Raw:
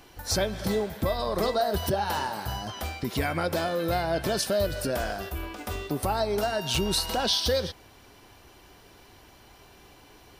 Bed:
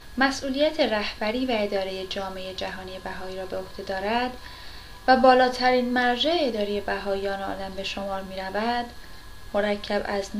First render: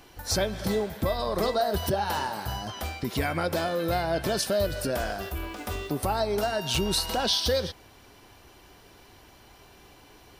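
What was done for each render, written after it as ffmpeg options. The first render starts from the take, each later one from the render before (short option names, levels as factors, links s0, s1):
-filter_complex "[0:a]asettb=1/sr,asplit=3[s0][s1][s2];[s0]atrim=end=5.194[s3];[s1]atrim=start=5.19:end=5.9,asetpts=PTS-STARTPTS,afade=t=in:d=0.004:c=qsin,afade=t=out:st=0.706:d=0.004:c=qsin,aeval=exprs='val(0)+0.5*0.00376*sgn(val(0))':c=same[s4];[s2]atrim=start=5.896[s5];[s3][s4]acrossfade=d=0.004:c1=hsin:c2=qsin[s6];[s6][s5]acrossfade=d=0.004:c1=qsin:c2=hsin"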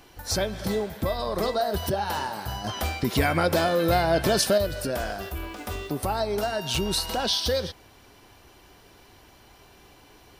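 -filter_complex "[0:a]asettb=1/sr,asplit=3[s0][s1][s2];[s0]atrim=end=2.644[s3];[s1]atrim=start=2.64:end=4.58,asetpts=PTS-STARTPTS,afade=t=in:d=0.004:c=qsin,afade=t=out:st=1.936:d=0.004:c=qsin,acontrast=31[s4];[s2]atrim=start=4.576[s5];[s3][s4]acrossfade=d=0.004:c1=hsin:c2=qsin[s6];[s6][s5]acrossfade=d=0.004:c1=qsin:c2=hsin"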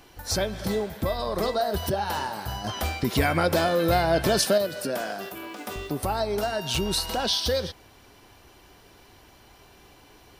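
-filter_complex "[0:a]asettb=1/sr,asplit=3[s0][s1][s2];[s0]atrim=end=4.454[s3];[s1]atrim=start=4.45:end=5.76,asetpts=PTS-STARTPTS,afade=t=in:d=0.004:c=qsin,afade=t=out:st=1.306:d=0.004:c=qsin,highpass=f=150:w=0.5412,highpass=f=150:w=1.3066[s4];[s2]atrim=start=5.756[s5];[s3][s4]acrossfade=d=0.004:c1=hsin:c2=qsin[s6];[s6][s5]acrossfade=d=0.004:c1=qsin:c2=hsin"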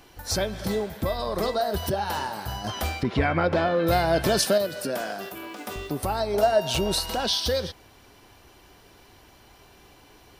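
-filter_complex "[0:a]asettb=1/sr,asplit=3[s0][s1][s2];[s0]atrim=end=3.034[s3];[s1]atrim=start=3.03:end=3.87,asetpts=PTS-STARTPTS,afade=t=in:d=0.004:c=qsin,afade=t=out:st=0.836:d=0.004:c=qsin,lowpass=2700[s4];[s2]atrim=start=3.866[s5];[s3][s4]acrossfade=d=0.004:c1=hsin:c2=qsin[s6];[s6][s5]acrossfade=d=0.004:c1=qsin:c2=hsin,asettb=1/sr,asplit=3[s7][s8][s9];[s7]atrim=end=6.344[s10];[s8]atrim=start=6.34:end=6.99,asetpts=PTS-STARTPTS,afade=t=in:d=0.004:c=qsin,afade=t=out:st=0.646:d=0.004:c=qsin,equalizer=f=610:w=2:g=10.5[s11];[s9]atrim=start=6.986[s12];[s10][s11]acrossfade=d=0.004:c1=hsin:c2=qsin[s13];[s13][s12]acrossfade=d=0.004:c1=qsin:c2=hsin"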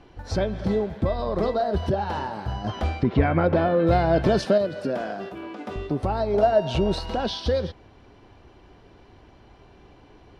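-af "lowpass=4000,tiltshelf=f=900:g=5"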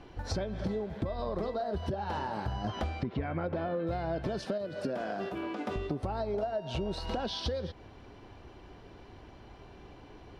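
-af "acompressor=threshold=0.0316:ratio=12"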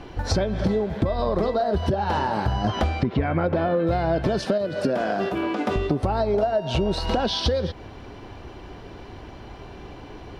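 -af "volume=3.55"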